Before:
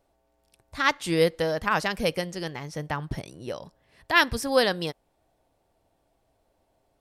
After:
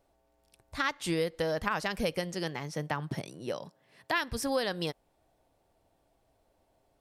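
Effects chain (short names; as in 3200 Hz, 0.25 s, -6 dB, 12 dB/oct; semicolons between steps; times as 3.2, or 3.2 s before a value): 2.34–4.18 HPF 120 Hz 24 dB/oct; compressor 10:1, threshold -25 dBFS, peak gain reduction 12.5 dB; gain -1 dB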